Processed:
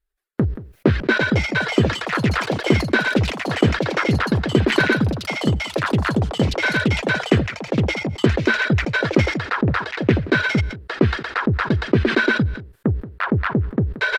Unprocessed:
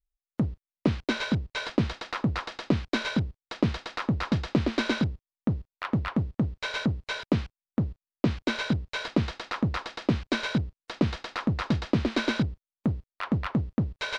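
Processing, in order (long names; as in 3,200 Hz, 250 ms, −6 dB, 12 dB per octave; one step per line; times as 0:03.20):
on a send: single-tap delay 178 ms −22.5 dB
on the sum: downsampling to 32,000 Hz
graphic EQ with 15 bands 100 Hz +5 dB, 400 Hz +11 dB, 1,600 Hz +11 dB, 6,300 Hz −6 dB
reverb reduction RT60 1.8 s
in parallel at −2.5 dB: brickwall limiter −15 dBFS, peak gain reduction 9.5 dB
on the sum: delay with pitch and tempo change per echo 588 ms, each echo +6 semitones, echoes 3, each echo −6 dB
level that may fall only so fast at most 100 dB per second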